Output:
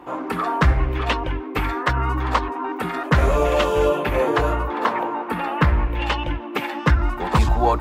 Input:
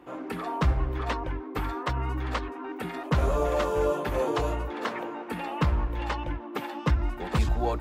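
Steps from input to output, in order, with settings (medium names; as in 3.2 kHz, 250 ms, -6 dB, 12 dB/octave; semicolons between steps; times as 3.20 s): 3.89–6.01 s: peaking EQ 6.6 kHz -6 dB 1.4 oct; sweeping bell 0.4 Hz 930–3000 Hz +8 dB; trim +7 dB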